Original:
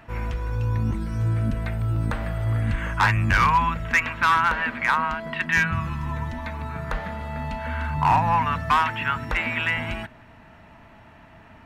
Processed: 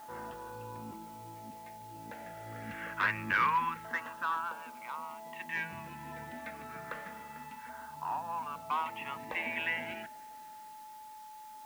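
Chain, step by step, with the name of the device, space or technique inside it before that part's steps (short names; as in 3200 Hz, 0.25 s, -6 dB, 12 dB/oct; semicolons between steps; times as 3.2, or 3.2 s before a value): shortwave radio (BPF 310–2700 Hz; tremolo 0.31 Hz, depth 70%; LFO notch saw down 0.26 Hz 630–2500 Hz; whine 860 Hz -41 dBFS; white noise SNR 22 dB); gain -6 dB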